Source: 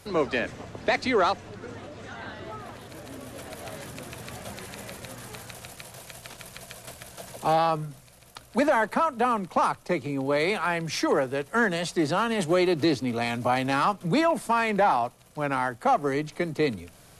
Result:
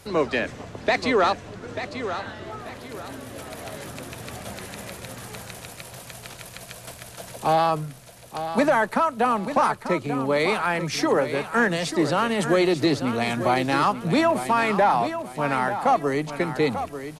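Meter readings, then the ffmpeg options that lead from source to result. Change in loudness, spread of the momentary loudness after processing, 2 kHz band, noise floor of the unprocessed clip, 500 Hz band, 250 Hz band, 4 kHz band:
+2.5 dB, 17 LU, +3.0 dB, -53 dBFS, +3.0 dB, +3.0 dB, +3.0 dB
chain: -af "aecho=1:1:890|1780|2670|3560:0.316|0.104|0.0344|0.0114,volume=1.33"

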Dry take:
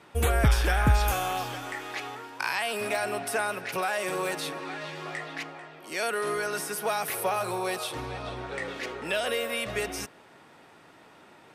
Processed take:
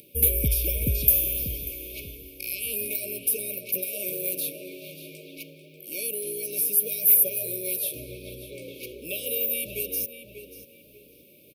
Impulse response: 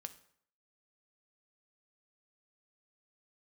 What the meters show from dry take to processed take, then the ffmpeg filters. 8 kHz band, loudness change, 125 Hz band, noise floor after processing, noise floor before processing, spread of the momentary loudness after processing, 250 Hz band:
+8.5 dB, +5.0 dB, -3.5 dB, -54 dBFS, -54 dBFS, 22 LU, -3.5 dB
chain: -filter_complex "[0:a]acompressor=mode=upward:threshold=0.00562:ratio=2.5,asplit=2[s0][s1];[s1]adelay=590,lowpass=f=3100:p=1,volume=0.376,asplit=2[s2][s3];[s3]adelay=590,lowpass=f=3100:p=1,volume=0.32,asplit=2[s4][s5];[s5]adelay=590,lowpass=f=3100:p=1,volume=0.32,asplit=2[s6][s7];[s7]adelay=590,lowpass=f=3100:p=1,volume=0.32[s8];[s0][s2][s4][s6][s8]amix=inputs=5:normalize=0,aexciter=amount=14.7:drive=8.1:freq=11000,afftfilt=real='re*(1-between(b*sr/4096,620,2200))':imag='im*(1-between(b*sr/4096,620,2200))':win_size=4096:overlap=0.75,volume=0.631"

